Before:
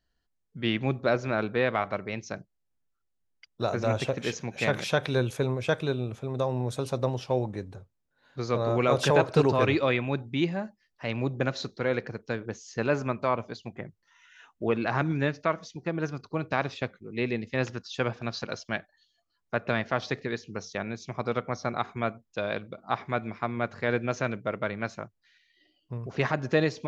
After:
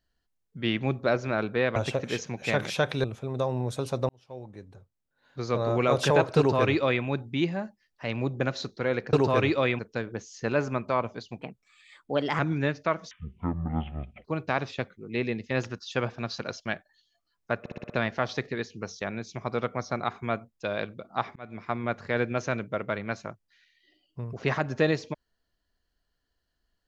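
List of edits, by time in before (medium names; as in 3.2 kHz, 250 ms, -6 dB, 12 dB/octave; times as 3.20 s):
1.76–3.90 s: delete
5.18–6.04 s: delete
7.09–8.54 s: fade in
9.38–10.04 s: copy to 12.13 s
13.73–14.98 s: speed 125%
15.70–16.28 s: speed 51%
19.63 s: stutter 0.06 s, 6 plays
23.09–23.42 s: fade in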